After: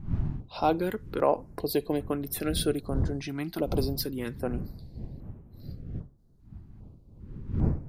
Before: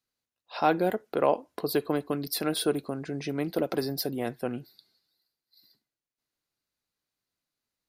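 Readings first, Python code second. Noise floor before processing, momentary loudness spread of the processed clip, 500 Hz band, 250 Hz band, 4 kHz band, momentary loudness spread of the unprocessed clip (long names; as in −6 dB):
below −85 dBFS, 18 LU, −1.0 dB, +0.5 dB, −1.5 dB, 8 LU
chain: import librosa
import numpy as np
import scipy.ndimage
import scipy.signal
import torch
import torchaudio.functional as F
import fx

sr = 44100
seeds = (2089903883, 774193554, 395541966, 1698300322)

y = fx.dmg_wind(x, sr, seeds[0], corner_hz=130.0, level_db=-35.0)
y = fx.filter_held_notch(y, sr, hz=2.5, low_hz=500.0, high_hz=4600.0)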